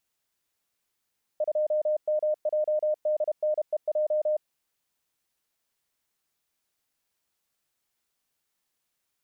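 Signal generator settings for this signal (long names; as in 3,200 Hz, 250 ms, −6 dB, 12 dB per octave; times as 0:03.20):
Morse code "2MJDNEJ" 32 words per minute 610 Hz −22 dBFS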